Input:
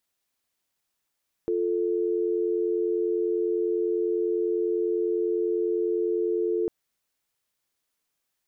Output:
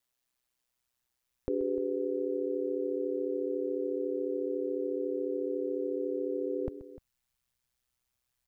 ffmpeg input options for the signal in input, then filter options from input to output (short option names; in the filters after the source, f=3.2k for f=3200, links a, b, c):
-f lavfi -i "aevalsrc='0.0531*(sin(2*PI*350*t)+sin(2*PI*440*t))':d=5.2:s=44100"
-af "aeval=exprs='val(0)*sin(2*PI*62*n/s)':c=same,asubboost=boost=6:cutoff=120,aecho=1:1:130|300:0.158|0.141"